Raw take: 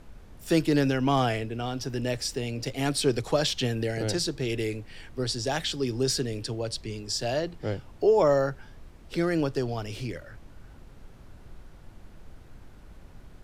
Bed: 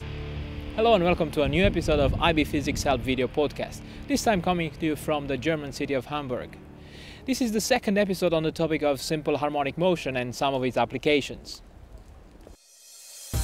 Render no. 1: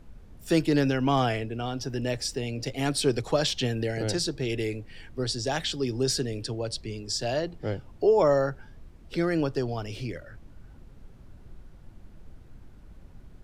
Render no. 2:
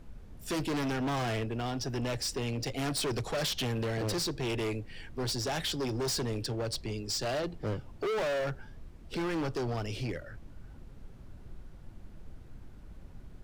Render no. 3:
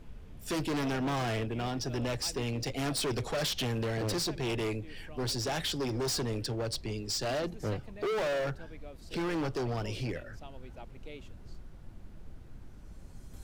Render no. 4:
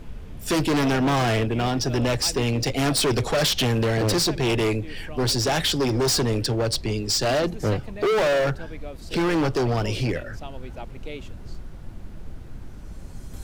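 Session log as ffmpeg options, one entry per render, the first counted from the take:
ffmpeg -i in.wav -af "afftdn=noise_reduction=6:noise_floor=-50" out.wav
ffmpeg -i in.wav -af "volume=29.5dB,asoftclip=hard,volume=-29.5dB" out.wav
ffmpeg -i in.wav -i bed.wav -filter_complex "[1:a]volume=-25.5dB[link_01];[0:a][link_01]amix=inputs=2:normalize=0" out.wav
ffmpeg -i in.wav -af "volume=10.5dB" out.wav

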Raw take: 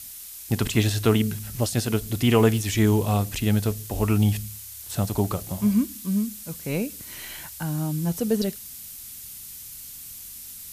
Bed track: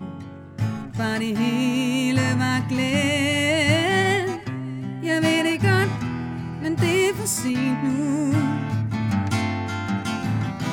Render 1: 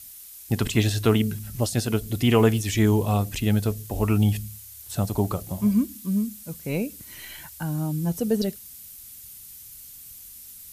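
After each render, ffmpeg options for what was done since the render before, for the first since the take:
ffmpeg -i in.wav -af "afftdn=noise_reduction=6:noise_floor=-41" out.wav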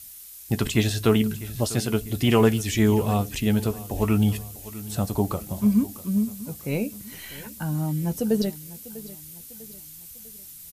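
ffmpeg -i in.wav -filter_complex "[0:a]asplit=2[link_01][link_02];[link_02]adelay=14,volume=-12dB[link_03];[link_01][link_03]amix=inputs=2:normalize=0,aecho=1:1:648|1296|1944|2592:0.133|0.06|0.027|0.0122" out.wav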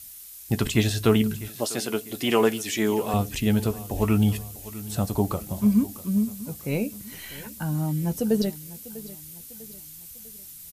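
ffmpeg -i in.wav -filter_complex "[0:a]asettb=1/sr,asplit=3[link_01][link_02][link_03];[link_01]atrim=end=1.484[link_04];[link_02]atrim=start=1.48:end=3.14,asetpts=PTS-STARTPTS,afade=type=in:duration=0.004:curve=qsin,afade=type=out:start_time=1.656:duration=0.004:curve=qsin,highpass=280[link_05];[link_03]atrim=start=3.136[link_06];[link_04][link_05]acrossfade=duration=0.004:curve1=hsin:curve2=qsin[link_07];[link_07][link_06]acrossfade=duration=0.004:curve1=qsin:curve2=hsin" out.wav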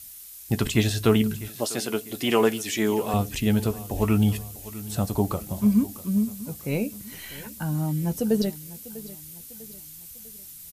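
ffmpeg -i in.wav -af anull out.wav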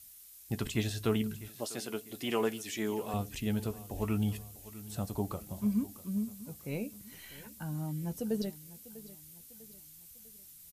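ffmpeg -i in.wav -af "volume=-10.5dB" out.wav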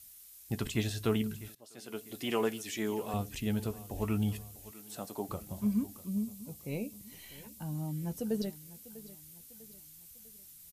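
ffmpeg -i in.wav -filter_complex "[0:a]asettb=1/sr,asplit=3[link_01][link_02][link_03];[link_01]atrim=end=4.714[link_04];[link_02]atrim=start=4.71:end=5.29,asetpts=PTS-STARTPTS,afade=type=in:duration=0.004:curve=qsin,afade=type=out:start_time=0.576:duration=0.004:curve=qsin,highpass=290[link_05];[link_03]atrim=start=5.286[link_06];[link_04][link_05]acrossfade=duration=0.004:curve1=hsin:curve2=qsin[link_07];[link_07][link_06]acrossfade=duration=0.004:curve1=qsin:curve2=hsin,asettb=1/sr,asplit=3[link_08][link_09][link_10];[link_08]atrim=end=6.054[link_11];[link_09]atrim=start=6.05:end=7.93,asetpts=PTS-STARTPTS,afade=type=in:duration=0.004:curve=qsin,afade=type=out:start_time=1.876:duration=0.004:curve=qsin,equalizer=frequency=1500:width_type=o:width=0.55:gain=-10[link_12];[link_10]atrim=start=7.926[link_13];[link_11][link_12]acrossfade=duration=0.004:curve1=hsin:curve2=qsin[link_14];[link_14][link_13]acrossfade=duration=0.004:curve1=qsin:curve2=hsin,asplit=2[link_15][link_16];[link_15]atrim=end=1.55,asetpts=PTS-STARTPTS,afade=type=out:start_time=1.546:duration=0.004:curve=hsin:silence=0.1[link_17];[link_16]atrim=start=1.55,asetpts=PTS-STARTPTS,afade=type=in:duration=0.49:curve=qua:silence=0.1[link_18];[link_17][link_18]concat=n=2:v=0:a=1" out.wav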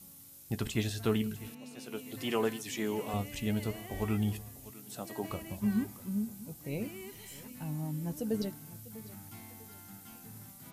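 ffmpeg -i in.wav -i bed.wav -filter_complex "[1:a]volume=-27.5dB[link_01];[0:a][link_01]amix=inputs=2:normalize=0" out.wav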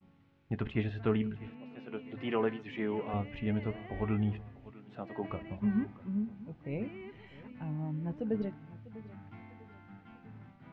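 ffmpeg -i in.wav -af "agate=range=-33dB:threshold=-50dB:ratio=3:detection=peak,lowpass=frequency=2500:width=0.5412,lowpass=frequency=2500:width=1.3066" out.wav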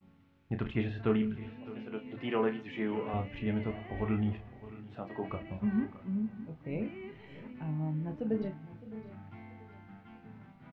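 ffmpeg -i in.wav -filter_complex "[0:a]asplit=2[link_01][link_02];[link_02]adelay=32,volume=-8dB[link_03];[link_01][link_03]amix=inputs=2:normalize=0,aecho=1:1:611:0.141" out.wav

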